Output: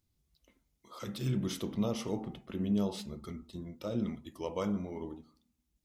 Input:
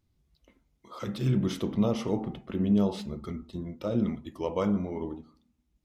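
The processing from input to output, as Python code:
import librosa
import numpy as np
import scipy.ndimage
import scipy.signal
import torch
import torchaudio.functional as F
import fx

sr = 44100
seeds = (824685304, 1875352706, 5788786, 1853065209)

y = fx.high_shelf(x, sr, hz=4100.0, db=11.0)
y = y * librosa.db_to_amplitude(-6.5)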